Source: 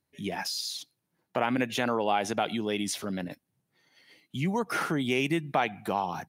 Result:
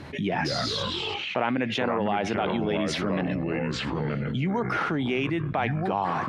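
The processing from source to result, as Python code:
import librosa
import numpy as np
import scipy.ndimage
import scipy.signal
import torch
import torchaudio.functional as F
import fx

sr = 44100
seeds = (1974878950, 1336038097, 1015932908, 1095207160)

p1 = scipy.signal.sosfilt(scipy.signal.butter(2, 3000.0, 'lowpass', fs=sr, output='sos'), x)
p2 = fx.rider(p1, sr, range_db=10, speed_s=0.5)
p3 = p1 + (p2 * 10.0 ** (2.0 / 20.0))
p4 = fx.echo_pitch(p3, sr, ms=99, semitones=-4, count=3, db_per_echo=-6.0)
p5 = fx.env_flatten(p4, sr, amount_pct=70)
y = p5 * 10.0 ** (-8.5 / 20.0)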